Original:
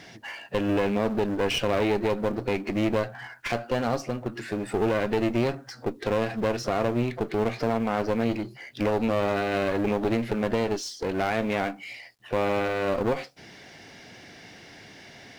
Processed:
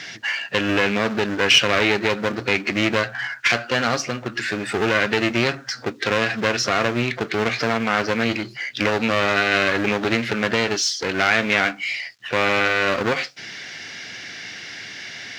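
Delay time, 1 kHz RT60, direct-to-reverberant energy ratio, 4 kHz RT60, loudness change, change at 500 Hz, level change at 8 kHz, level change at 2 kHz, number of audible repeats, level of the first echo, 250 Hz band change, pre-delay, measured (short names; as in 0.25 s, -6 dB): none, none, none, none, +6.5 dB, +2.5 dB, +13.5 dB, +14.5 dB, none, none, +2.5 dB, none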